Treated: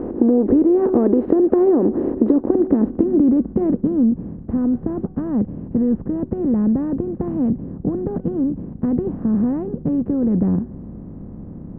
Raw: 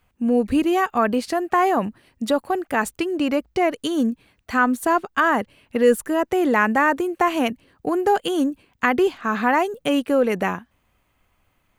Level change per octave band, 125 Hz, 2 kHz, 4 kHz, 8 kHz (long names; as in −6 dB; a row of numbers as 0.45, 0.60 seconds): can't be measured, below −25 dB, below −35 dB, below −40 dB